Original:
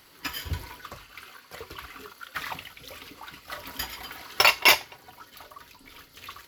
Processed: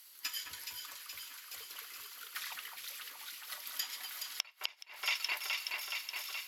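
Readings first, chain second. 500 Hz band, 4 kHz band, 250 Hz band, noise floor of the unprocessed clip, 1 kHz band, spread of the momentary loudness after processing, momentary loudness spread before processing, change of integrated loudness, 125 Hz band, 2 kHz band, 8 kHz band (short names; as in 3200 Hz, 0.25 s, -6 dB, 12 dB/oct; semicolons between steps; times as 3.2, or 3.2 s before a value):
-23.0 dB, -9.5 dB, under -25 dB, -55 dBFS, -17.5 dB, 11 LU, 24 LU, -15.5 dB, under -30 dB, -12.5 dB, -6.5 dB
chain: differentiator; thinning echo 0.376 s, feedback 81%, level -20 dB; treble ducked by the level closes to 2800 Hz, closed at -25 dBFS; on a send: echo with dull and thin repeats by turns 0.211 s, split 2100 Hz, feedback 83%, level -4 dB; on the sum: flipped gate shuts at -20 dBFS, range -28 dB; gain +1.5 dB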